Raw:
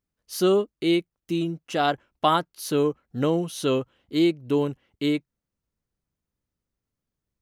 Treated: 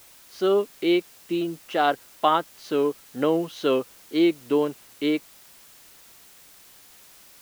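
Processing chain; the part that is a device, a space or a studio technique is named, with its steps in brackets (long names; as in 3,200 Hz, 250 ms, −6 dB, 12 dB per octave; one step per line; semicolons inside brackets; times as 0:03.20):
dictaphone (band-pass filter 290–3,200 Hz; automatic gain control gain up to 7 dB; tape wow and flutter; white noise bed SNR 25 dB)
level −4 dB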